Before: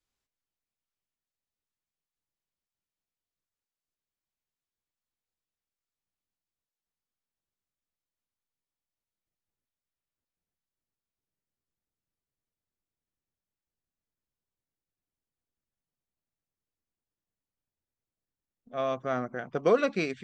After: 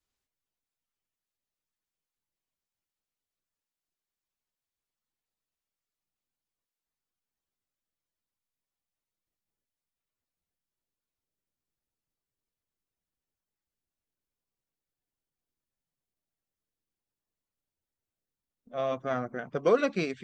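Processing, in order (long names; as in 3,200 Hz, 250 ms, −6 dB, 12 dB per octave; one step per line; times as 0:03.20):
spectral magnitudes quantised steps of 15 dB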